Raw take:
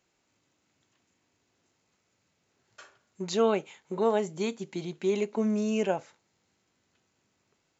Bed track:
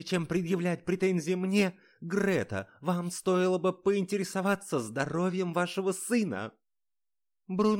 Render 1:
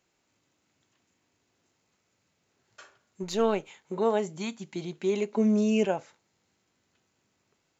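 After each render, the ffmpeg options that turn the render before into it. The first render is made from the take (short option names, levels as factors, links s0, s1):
-filter_complex "[0:a]asettb=1/sr,asplit=3[s0][s1][s2];[s0]atrim=end=3.234[s3];[s1]atrim=start=3.23:end=3.68,asetpts=PTS-STARTPTS,afade=t=in:d=0.004:c=qsin,afade=t=out:st=0.446:d=0.004:c=qsin,aeval=exprs='if(lt(val(0),0),0.708*val(0),val(0))':c=same[s4];[s2]atrim=start=3.676[s5];[s3][s4]acrossfade=d=0.004:c1=hsin:c2=qsin[s6];[s6][s5]acrossfade=d=0.004:c1=qsin:c2=hsin,asettb=1/sr,asplit=3[s7][s8][s9];[s7]atrim=end=4.364[s10];[s8]atrim=start=4.36:end=4.76,asetpts=PTS-STARTPTS,afade=t=in:d=0.004:c=qsin,afade=t=out:st=0.396:d=0.004:c=qsin,equalizer=f=440:t=o:w=0.55:g=-13[s11];[s9]atrim=start=4.756[s12];[s10][s11]acrossfade=d=0.004:c1=hsin:c2=qsin[s13];[s13][s12]acrossfade=d=0.004:c1=qsin:c2=hsin,asettb=1/sr,asplit=3[s14][s15][s16];[s14]atrim=end=5.344[s17];[s15]atrim=start=5.34:end=5.85,asetpts=PTS-STARTPTS,afade=t=in:d=0.004:c=qsin,afade=t=out:st=0.506:d=0.004:c=qsin,aecho=1:1:5:0.65,atrim=end_sample=22491[s18];[s16]atrim=start=5.846[s19];[s17][s18]acrossfade=d=0.004:c1=hsin:c2=qsin[s20];[s20][s19]acrossfade=d=0.004:c1=qsin:c2=hsin"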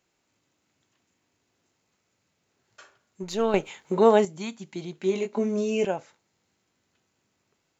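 -filter_complex "[0:a]asettb=1/sr,asplit=3[s0][s1][s2];[s0]atrim=end=4.994[s3];[s1]atrim=start=4.99:end=5.85,asetpts=PTS-STARTPTS,afade=t=in:d=0.004:c=qsin,afade=t=out:st=0.856:d=0.004:c=qsin,asplit=2[s4][s5];[s5]adelay=21,volume=0.531[s6];[s4][s6]amix=inputs=2:normalize=0,atrim=end_sample=37926[s7];[s2]atrim=start=5.846[s8];[s3][s7]acrossfade=d=0.004:c1=hsin:c2=qsin[s9];[s9][s8]acrossfade=d=0.004:c1=qsin:c2=hsin,asplit=3[s10][s11][s12];[s10]atrim=end=3.542[s13];[s11]atrim=start=3.538:end=4.252,asetpts=PTS-STARTPTS,volume=2.51[s14];[s12]atrim=start=4.248[s15];[s13][s14]acrossfade=d=0.004:c1=hsin:c2=hsin[s16];[s16][s15]acrossfade=d=0.004:c1=hsin:c2=hsin"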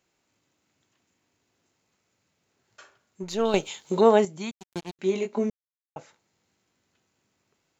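-filter_complex "[0:a]asettb=1/sr,asplit=3[s0][s1][s2];[s0]atrim=end=3.454[s3];[s1]atrim=start=3.45:end=4.01,asetpts=PTS-STARTPTS,afade=t=in:d=0.004:c=qsin,afade=t=out:st=0.556:d=0.004:c=qsin,highshelf=f=2800:t=q:w=1.5:g=8[s4];[s2]atrim=start=4.006[s5];[s3][s4]acrossfade=d=0.004:c1=hsin:c2=qsin[s6];[s6][s5]acrossfade=d=0.004:c1=qsin:c2=hsin,asettb=1/sr,asplit=3[s7][s8][s9];[s7]atrim=end=4.514[s10];[s8]atrim=start=4.51:end=4.99,asetpts=PTS-STARTPTS,afade=t=in:d=0.004:c=qsin,afade=t=out:st=0.476:d=0.004:c=qsin,acrusher=bits=4:mix=0:aa=0.5[s11];[s9]atrim=start=4.986[s12];[s10][s11]acrossfade=d=0.004:c1=hsin:c2=qsin[s13];[s13][s12]acrossfade=d=0.004:c1=qsin:c2=hsin,asplit=3[s14][s15][s16];[s14]atrim=end=5.5,asetpts=PTS-STARTPTS,afade=t=out:st=5.496:d=0.004:c=hsin[s17];[s15]atrim=start=5.5:end=5.96,asetpts=PTS-STARTPTS,volume=0[s18];[s16]atrim=start=5.96,asetpts=PTS-STARTPTS,afade=t=in:d=0.004:c=hsin[s19];[s17][s18][s19]concat=n=3:v=0:a=1"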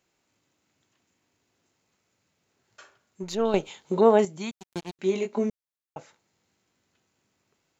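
-filter_complex "[0:a]asettb=1/sr,asplit=3[s0][s1][s2];[s0]atrim=end=3.354[s3];[s1]atrim=start=3.35:end=4.19,asetpts=PTS-STARTPTS,afade=t=in:d=0.004:c=qsin,afade=t=out:st=0.836:d=0.004:c=qsin,highshelf=f=2800:g=-10.5[s4];[s2]atrim=start=4.186[s5];[s3][s4]acrossfade=d=0.004:c1=hsin:c2=qsin[s6];[s6][s5]acrossfade=d=0.004:c1=qsin:c2=hsin"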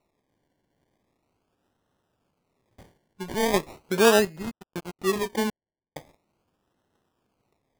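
-af "acrusher=samples=27:mix=1:aa=0.000001:lfo=1:lforange=16.2:lforate=0.4"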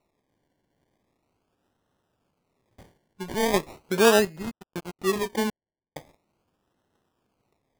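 -af anull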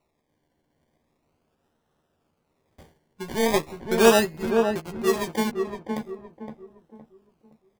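-filter_complex "[0:a]asplit=2[s0][s1];[s1]adelay=13,volume=0.447[s2];[s0][s2]amix=inputs=2:normalize=0,asplit=2[s3][s4];[s4]adelay=515,lowpass=f=1100:p=1,volume=0.631,asplit=2[s5][s6];[s6]adelay=515,lowpass=f=1100:p=1,volume=0.37,asplit=2[s7][s8];[s8]adelay=515,lowpass=f=1100:p=1,volume=0.37,asplit=2[s9][s10];[s10]adelay=515,lowpass=f=1100:p=1,volume=0.37,asplit=2[s11][s12];[s12]adelay=515,lowpass=f=1100:p=1,volume=0.37[s13];[s5][s7][s9][s11][s13]amix=inputs=5:normalize=0[s14];[s3][s14]amix=inputs=2:normalize=0"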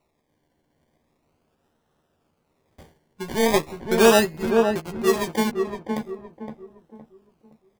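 -af "volume=1.33,alimiter=limit=0.708:level=0:latency=1"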